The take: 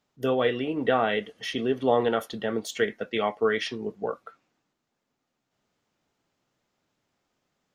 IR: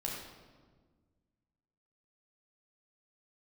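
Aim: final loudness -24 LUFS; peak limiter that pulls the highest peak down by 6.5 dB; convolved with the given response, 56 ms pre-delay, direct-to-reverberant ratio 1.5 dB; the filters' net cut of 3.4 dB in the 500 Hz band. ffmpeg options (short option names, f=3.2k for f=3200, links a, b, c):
-filter_complex "[0:a]equalizer=f=500:t=o:g=-4,alimiter=limit=-17.5dB:level=0:latency=1,asplit=2[a][b];[1:a]atrim=start_sample=2205,adelay=56[c];[b][c]afir=irnorm=-1:irlink=0,volume=-3.5dB[d];[a][d]amix=inputs=2:normalize=0,volume=4dB"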